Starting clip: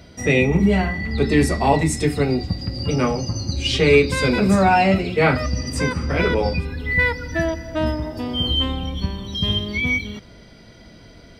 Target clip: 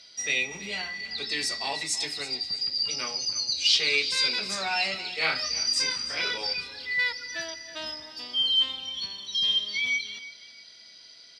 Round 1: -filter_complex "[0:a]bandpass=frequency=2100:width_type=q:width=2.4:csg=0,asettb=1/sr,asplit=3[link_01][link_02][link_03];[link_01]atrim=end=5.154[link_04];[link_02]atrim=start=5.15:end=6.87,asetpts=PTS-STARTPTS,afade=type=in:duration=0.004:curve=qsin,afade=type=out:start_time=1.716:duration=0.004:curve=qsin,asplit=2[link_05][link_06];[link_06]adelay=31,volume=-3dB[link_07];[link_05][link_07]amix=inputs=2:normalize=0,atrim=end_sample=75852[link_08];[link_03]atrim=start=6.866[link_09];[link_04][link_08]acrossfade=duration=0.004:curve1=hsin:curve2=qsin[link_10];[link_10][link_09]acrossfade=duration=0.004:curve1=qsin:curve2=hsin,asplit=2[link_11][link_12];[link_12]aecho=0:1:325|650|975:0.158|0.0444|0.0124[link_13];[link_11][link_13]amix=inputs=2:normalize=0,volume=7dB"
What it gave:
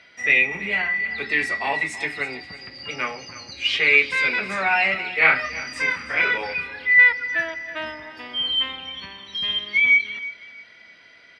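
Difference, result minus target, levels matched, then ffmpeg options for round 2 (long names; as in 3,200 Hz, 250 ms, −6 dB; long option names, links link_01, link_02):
4,000 Hz band −9.0 dB
-filter_complex "[0:a]bandpass=frequency=4700:width_type=q:width=2.4:csg=0,asettb=1/sr,asplit=3[link_01][link_02][link_03];[link_01]atrim=end=5.154[link_04];[link_02]atrim=start=5.15:end=6.87,asetpts=PTS-STARTPTS,afade=type=in:duration=0.004:curve=qsin,afade=type=out:start_time=1.716:duration=0.004:curve=qsin,asplit=2[link_05][link_06];[link_06]adelay=31,volume=-3dB[link_07];[link_05][link_07]amix=inputs=2:normalize=0,atrim=end_sample=75852[link_08];[link_03]atrim=start=6.866[link_09];[link_04][link_08]acrossfade=duration=0.004:curve1=hsin:curve2=qsin[link_10];[link_10][link_09]acrossfade=duration=0.004:curve1=qsin:curve2=hsin,asplit=2[link_11][link_12];[link_12]aecho=0:1:325|650|975:0.158|0.0444|0.0124[link_13];[link_11][link_13]amix=inputs=2:normalize=0,volume=7dB"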